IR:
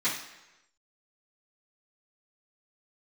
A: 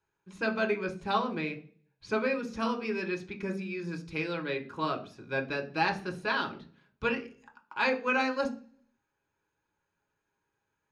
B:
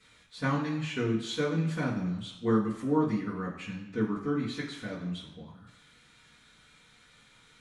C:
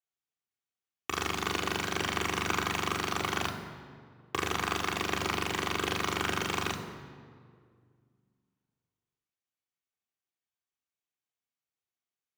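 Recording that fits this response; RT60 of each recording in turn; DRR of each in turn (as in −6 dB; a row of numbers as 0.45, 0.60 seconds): B; 0.40, 1.0, 2.0 seconds; 2.0, −14.0, −2.0 decibels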